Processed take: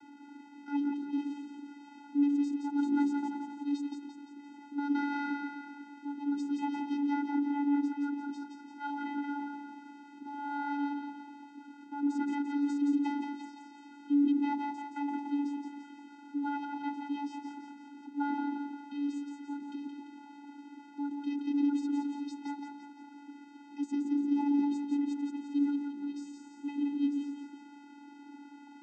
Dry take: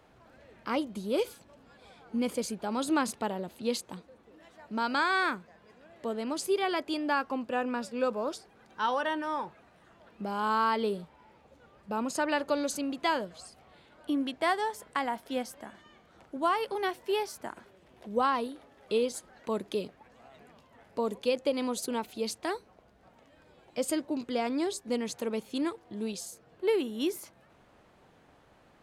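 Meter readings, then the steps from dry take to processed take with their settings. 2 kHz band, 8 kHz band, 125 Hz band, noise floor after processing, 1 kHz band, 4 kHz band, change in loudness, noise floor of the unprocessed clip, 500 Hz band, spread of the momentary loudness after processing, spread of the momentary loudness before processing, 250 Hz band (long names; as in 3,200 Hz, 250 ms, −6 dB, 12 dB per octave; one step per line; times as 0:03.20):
−10.0 dB, below −15 dB, below −15 dB, −53 dBFS, −7.0 dB, below −15 dB, −2.0 dB, −61 dBFS, below −20 dB, 20 LU, 13 LU, +4.5 dB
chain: converter with a step at zero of −40.5 dBFS
echo with a time of its own for lows and highs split 690 Hz, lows 124 ms, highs 172 ms, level −4.5 dB
channel vocoder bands 16, square 286 Hz
level −3 dB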